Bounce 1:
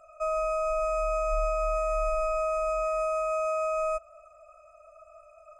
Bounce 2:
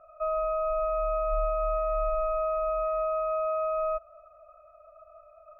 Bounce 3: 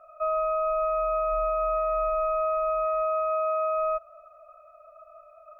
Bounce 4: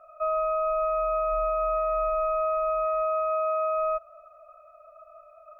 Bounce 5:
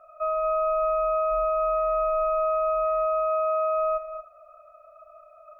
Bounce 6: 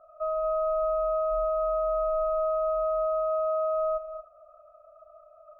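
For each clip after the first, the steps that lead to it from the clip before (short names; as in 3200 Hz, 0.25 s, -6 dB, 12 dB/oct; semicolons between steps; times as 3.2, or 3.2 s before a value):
LPF 1900 Hz 24 dB/oct
low shelf 400 Hz -12 dB; gain +5 dB
nothing audible
non-linear reverb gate 0.26 s rising, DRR 8.5 dB
Gaussian blur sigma 6.4 samples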